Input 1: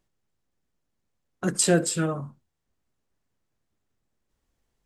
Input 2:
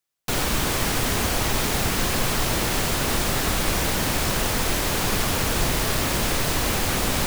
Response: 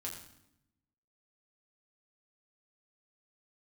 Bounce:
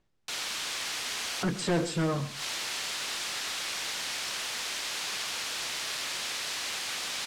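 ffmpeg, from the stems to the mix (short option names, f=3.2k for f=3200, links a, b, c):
-filter_complex "[0:a]asoftclip=type=tanh:threshold=-26dB,volume=2.5dB,asplit=3[a][b][c];[b]volume=-16dB[d];[1:a]aderivative,volume=3dB,asplit=2[e][f];[f]volume=-11.5dB[g];[c]apad=whole_len=320492[h];[e][h]sidechaincompress=threshold=-51dB:ratio=8:attack=16:release=132[i];[d][g]amix=inputs=2:normalize=0,aecho=0:1:129:1[j];[a][i][j]amix=inputs=3:normalize=0,lowpass=4.2k"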